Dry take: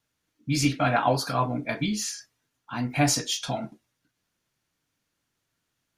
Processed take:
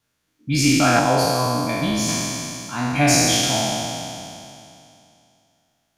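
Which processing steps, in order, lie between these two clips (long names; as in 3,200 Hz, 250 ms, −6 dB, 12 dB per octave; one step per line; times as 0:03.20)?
peak hold with a decay on every bin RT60 2.64 s
0:00.99–0:02.09: parametric band 1,500 Hz −8 dB 1.8 octaves
level +2.5 dB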